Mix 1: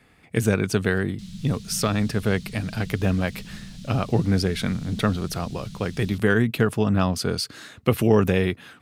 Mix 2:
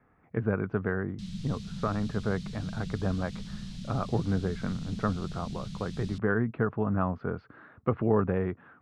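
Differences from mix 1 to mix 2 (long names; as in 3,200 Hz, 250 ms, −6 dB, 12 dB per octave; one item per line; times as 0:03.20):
speech: add transistor ladder low-pass 1,600 Hz, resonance 35%
master: add high-frequency loss of the air 58 metres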